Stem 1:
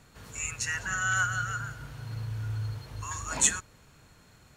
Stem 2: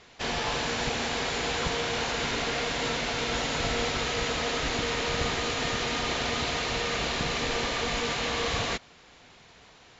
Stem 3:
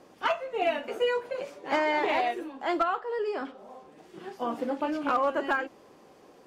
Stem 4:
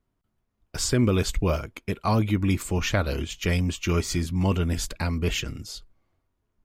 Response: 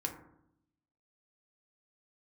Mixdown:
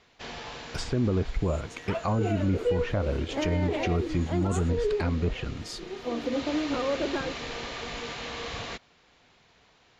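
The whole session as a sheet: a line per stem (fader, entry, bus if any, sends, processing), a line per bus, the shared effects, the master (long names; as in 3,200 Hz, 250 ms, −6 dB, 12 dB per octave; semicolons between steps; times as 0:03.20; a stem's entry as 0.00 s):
−18.0 dB, 1.10 s, no send, no processing
−7.0 dB, 0.00 s, no send, low-pass filter 6,700 Hz 12 dB per octave; automatic ducking −11 dB, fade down 1.55 s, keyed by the fourth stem
−8.0 dB, 1.65 s, no send, low shelf with overshoot 630 Hz +9.5 dB, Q 1.5
−0.5 dB, 0.00 s, no send, treble cut that deepens with the level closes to 1,000 Hz, closed at −20.5 dBFS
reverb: not used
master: brickwall limiter −18 dBFS, peak gain reduction 7 dB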